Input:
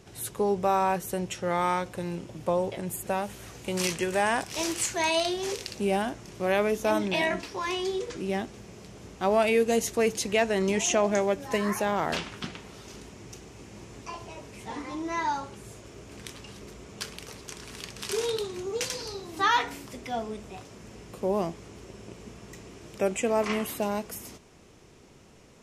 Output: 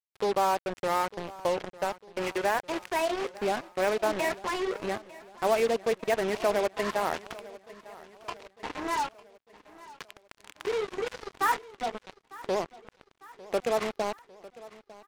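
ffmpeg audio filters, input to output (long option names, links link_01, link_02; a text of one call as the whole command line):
ffmpeg -i in.wav -filter_complex "[0:a]acrossover=split=2600[link_01][link_02];[link_02]acompressor=threshold=-46dB:ratio=4:attack=1:release=60[link_03];[link_01][link_03]amix=inputs=2:normalize=0,bass=frequency=250:gain=-13,treble=frequency=4000:gain=-13,atempo=1.7,asplit=2[link_04][link_05];[link_05]acompressor=threshold=-37dB:ratio=6,volume=-0.5dB[link_06];[link_04][link_06]amix=inputs=2:normalize=0,acrusher=bits=4:mix=0:aa=0.5,asplit=2[link_07][link_08];[link_08]aecho=0:1:901|1802|2703|3604:0.106|0.0572|0.0309|0.0167[link_09];[link_07][link_09]amix=inputs=2:normalize=0,volume=-1.5dB" out.wav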